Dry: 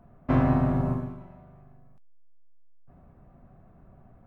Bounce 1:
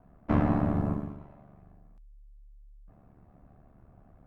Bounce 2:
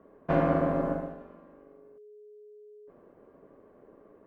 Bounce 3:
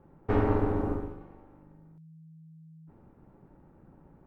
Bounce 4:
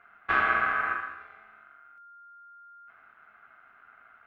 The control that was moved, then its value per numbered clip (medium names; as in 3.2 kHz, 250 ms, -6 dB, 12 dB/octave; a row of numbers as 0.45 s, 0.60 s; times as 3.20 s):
ring modulator, frequency: 36 Hz, 420 Hz, 160 Hz, 1.4 kHz